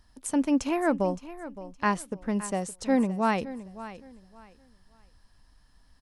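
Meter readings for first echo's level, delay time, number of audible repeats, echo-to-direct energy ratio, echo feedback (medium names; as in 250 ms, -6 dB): -15.0 dB, 566 ms, 2, -14.5 dB, 25%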